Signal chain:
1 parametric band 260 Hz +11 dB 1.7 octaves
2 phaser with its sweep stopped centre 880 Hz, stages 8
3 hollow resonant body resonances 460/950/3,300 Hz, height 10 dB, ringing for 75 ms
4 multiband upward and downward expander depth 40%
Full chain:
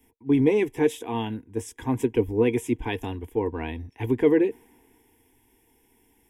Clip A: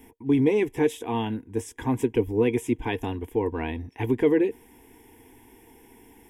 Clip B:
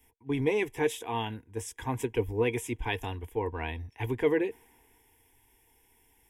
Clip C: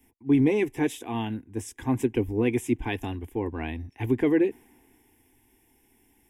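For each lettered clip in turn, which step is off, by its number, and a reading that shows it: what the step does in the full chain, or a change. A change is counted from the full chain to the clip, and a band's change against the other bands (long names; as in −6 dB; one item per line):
4, change in momentary loudness spread −2 LU
1, 250 Hz band −9.5 dB
3, 500 Hz band −4.0 dB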